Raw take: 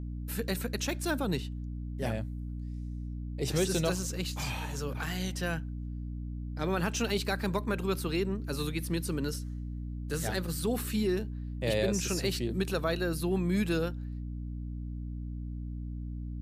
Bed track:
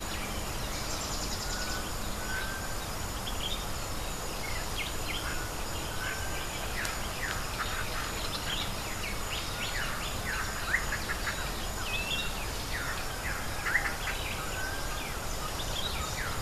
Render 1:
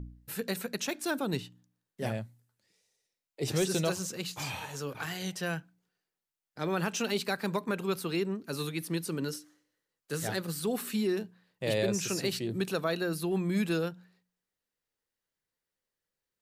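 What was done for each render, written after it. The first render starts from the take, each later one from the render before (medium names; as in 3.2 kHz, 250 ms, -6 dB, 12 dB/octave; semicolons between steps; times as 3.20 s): de-hum 60 Hz, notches 5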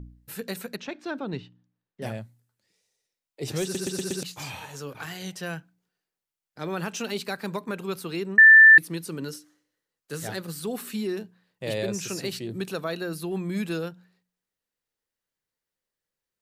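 0.76–2.02 s: distance through air 200 m; 3.63 s: stutter in place 0.12 s, 5 plays; 8.38–8.78 s: bleep 1.77 kHz -8 dBFS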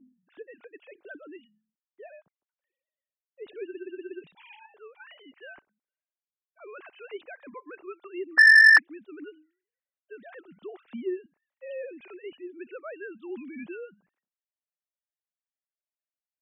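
formants replaced by sine waves; saturation -9.5 dBFS, distortion -14 dB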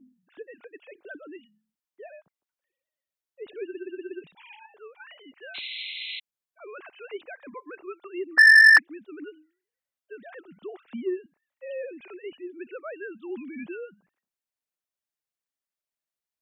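5.54–6.20 s: painted sound noise 2–4.2 kHz -38 dBFS; in parallel at -11 dB: saturation -18.5 dBFS, distortion -10 dB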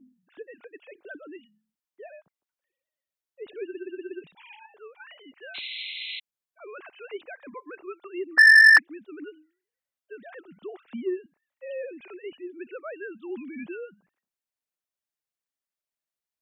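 no audible change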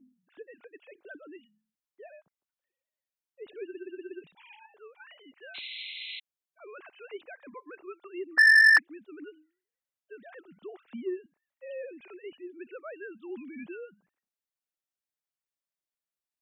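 trim -4.5 dB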